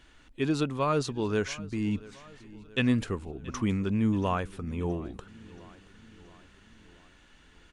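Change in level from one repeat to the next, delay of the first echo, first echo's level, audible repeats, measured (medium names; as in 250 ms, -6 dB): -5.0 dB, 677 ms, -20.5 dB, 3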